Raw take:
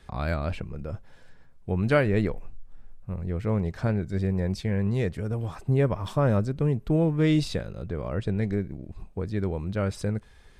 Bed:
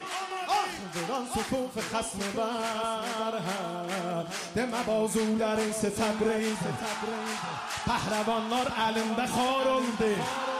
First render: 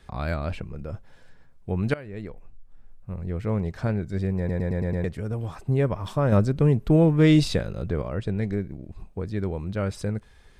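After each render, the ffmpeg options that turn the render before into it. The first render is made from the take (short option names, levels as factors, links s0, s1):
-filter_complex "[0:a]asplit=10[s0][s1][s2][s3][s4][s5][s6][s7][s8][s9];[s0]atrim=end=1.94,asetpts=PTS-STARTPTS,afade=t=out:st=1.936:d=0.004:c=hsin:silence=0.0841395[s10];[s1]atrim=start=1.94:end=4.492,asetpts=PTS-STARTPTS,afade=t=in:d=1.33:silence=0.0841395[s11];[s2]atrim=start=4.378:end=4.492[s12];[s3]atrim=start=4.378:end=4.492[s13];[s4]atrim=start=4.378:end=4.492[s14];[s5]atrim=start=4.378:end=4.492[s15];[s6]atrim=start=4.378:end=4.492[s16];[s7]atrim=start=5.038:end=6.322[s17];[s8]atrim=start=6.318:end=8.022,asetpts=PTS-STARTPTS,volume=1.78[s18];[s9]atrim=start=8.018[s19];[s10][s11]concat=n=2:v=0:a=1[s20];[s20][s12]acrossfade=d=0.004:c1=hsin:c2=hsin[s21];[s21][s13]acrossfade=d=0.004:c1=hsin:c2=hsin[s22];[s22][s14]acrossfade=d=0.004:c1=hsin:c2=hsin[s23];[s23][s15]acrossfade=d=0.004:c1=hsin:c2=hsin[s24];[s24][s16]acrossfade=d=0.004:c1=hsin:c2=hsin[s25];[s25][s17]acrossfade=d=0.004:c1=hsin:c2=hsin[s26];[s26][s18]acrossfade=d=0.004:c1=hsin:c2=hsin[s27];[s27][s19]acrossfade=d=0.004:c1=hsin:c2=hsin"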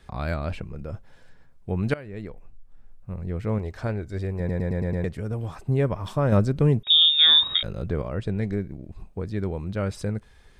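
-filter_complex "[0:a]asettb=1/sr,asplit=3[s0][s1][s2];[s0]atrim=end=3.584[s3];[s1]atrim=start=3.58:end=4.4,asetpts=PTS-STARTPTS,afade=t=in:d=0.004:c=qsin,afade=t=out:st=0.816:d=0.004:c=qsin,equalizer=f=170:w=2.2:g=-10.5[s4];[s2]atrim=start=4.396[s5];[s3][s4]acrossfade=d=0.004:c1=hsin:c2=qsin[s6];[s6][s5]acrossfade=d=0.004:c1=qsin:c2=hsin,asettb=1/sr,asplit=3[s7][s8][s9];[s7]atrim=end=6.834[s10];[s8]atrim=start=6.83:end=7.63,asetpts=PTS-STARTPTS,afade=t=in:d=0.004:c=qsin,afade=t=out:st=0.796:d=0.004:c=qsin,lowpass=f=3200:t=q:w=0.5098,lowpass=f=3200:t=q:w=0.6013,lowpass=f=3200:t=q:w=0.9,lowpass=f=3200:t=q:w=2.563,afreqshift=-3800[s11];[s9]atrim=start=7.626[s12];[s10][s11]acrossfade=d=0.004:c1=hsin:c2=qsin[s13];[s13][s12]acrossfade=d=0.004:c1=qsin:c2=hsin"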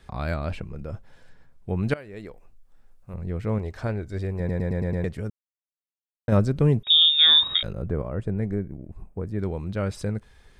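-filter_complex "[0:a]asettb=1/sr,asplit=3[s0][s1][s2];[s0]atrim=end=1.964[s3];[s1]atrim=start=1.96:end=3.14,asetpts=PTS-STARTPTS,afade=t=in:d=0.004:c=qsin,afade=t=out:st=1.176:d=0.004:c=qsin,bass=f=250:g=-7,treble=f=4000:g=5[s4];[s2]atrim=start=3.136[s5];[s3][s4]acrossfade=d=0.004:c1=hsin:c2=qsin[s6];[s6][s5]acrossfade=d=0.004:c1=qsin:c2=hsin,asettb=1/sr,asplit=3[s7][s8][s9];[s7]atrim=end=7.734[s10];[s8]atrim=start=7.73:end=9.39,asetpts=PTS-STARTPTS,afade=t=in:d=0.004:c=qsin,afade=t=out:st=1.656:d=0.004:c=qsin,equalizer=f=4000:t=o:w=1.5:g=-15[s11];[s9]atrim=start=9.386[s12];[s10][s11]acrossfade=d=0.004:c1=hsin:c2=qsin[s13];[s13][s12]acrossfade=d=0.004:c1=qsin:c2=hsin,asplit=3[s14][s15][s16];[s14]atrim=end=5.3,asetpts=PTS-STARTPTS,afade=t=out:st=5.296:d=0.004:c=hsin[s17];[s15]atrim=start=5.3:end=6.28,asetpts=PTS-STARTPTS,volume=0[s18];[s16]atrim=start=6.28,asetpts=PTS-STARTPTS,afade=t=in:d=0.004:c=hsin[s19];[s17][s18][s19]concat=n=3:v=0:a=1"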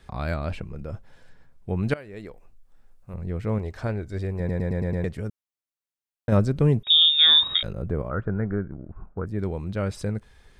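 -filter_complex "[0:a]asettb=1/sr,asplit=3[s0][s1][s2];[s0]atrim=end=8.104[s3];[s1]atrim=start=8.1:end=9.26,asetpts=PTS-STARTPTS,afade=t=in:d=0.004:c=qsin,afade=t=out:st=1.156:d=0.004:c=qsin,lowpass=f=1400:t=q:w=6[s4];[s2]atrim=start=9.256[s5];[s3][s4]acrossfade=d=0.004:c1=hsin:c2=qsin[s6];[s6][s5]acrossfade=d=0.004:c1=qsin:c2=hsin"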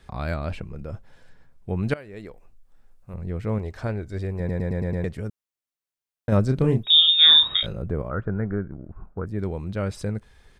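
-filter_complex "[0:a]asplit=3[s0][s1][s2];[s0]afade=t=out:st=6.48:d=0.02[s3];[s1]asplit=2[s4][s5];[s5]adelay=31,volume=0.531[s6];[s4][s6]amix=inputs=2:normalize=0,afade=t=in:st=6.48:d=0.02,afade=t=out:st=7.77:d=0.02[s7];[s2]afade=t=in:st=7.77:d=0.02[s8];[s3][s7][s8]amix=inputs=3:normalize=0"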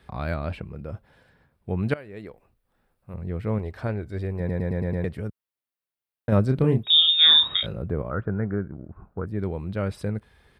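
-af "highpass=59,equalizer=f=6600:w=1.7:g=-11"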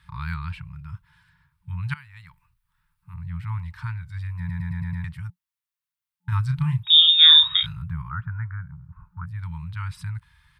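-af "afftfilt=real='re*(1-between(b*sr/4096,180,870))':imag='im*(1-between(b*sr/4096,180,870))':win_size=4096:overlap=0.75,adynamicequalizer=threshold=0.0224:dfrequency=2000:dqfactor=0.7:tfrequency=2000:tqfactor=0.7:attack=5:release=100:ratio=0.375:range=2:mode=boostabove:tftype=highshelf"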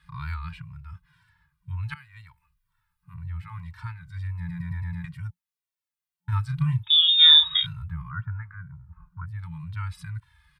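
-filter_complex "[0:a]asplit=2[s0][s1];[s1]adelay=2,afreqshift=-2[s2];[s0][s2]amix=inputs=2:normalize=1"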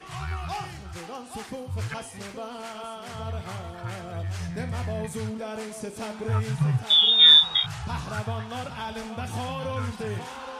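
-filter_complex "[1:a]volume=0.473[s0];[0:a][s0]amix=inputs=2:normalize=0"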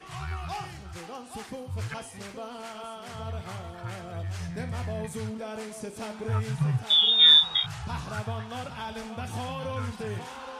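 -af "volume=0.75"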